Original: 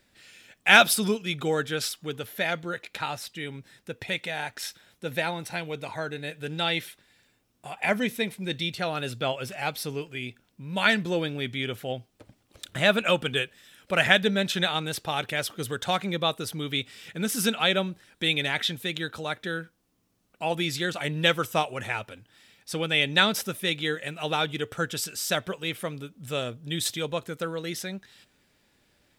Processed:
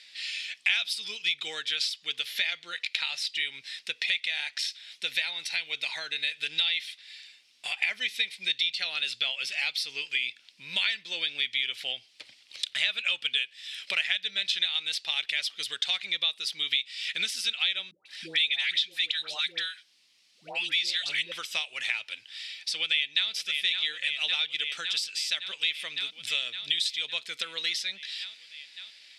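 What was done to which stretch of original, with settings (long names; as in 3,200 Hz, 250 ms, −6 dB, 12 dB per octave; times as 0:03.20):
0:17.91–0:21.32: all-pass dispersion highs, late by 148 ms, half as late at 750 Hz
0:22.76–0:23.30: delay throw 560 ms, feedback 70%, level −11.5 dB
whole clip: meter weighting curve ITU-R 468; downward compressor 5 to 1, threshold −36 dBFS; flat-topped bell 3,100 Hz +13 dB; level −3 dB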